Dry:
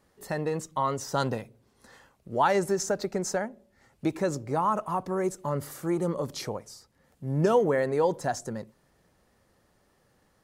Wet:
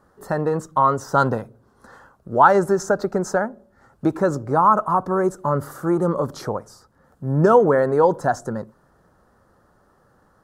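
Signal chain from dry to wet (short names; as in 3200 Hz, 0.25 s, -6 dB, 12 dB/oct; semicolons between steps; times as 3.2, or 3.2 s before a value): resonant high shelf 1800 Hz -8 dB, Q 3; gain +7.5 dB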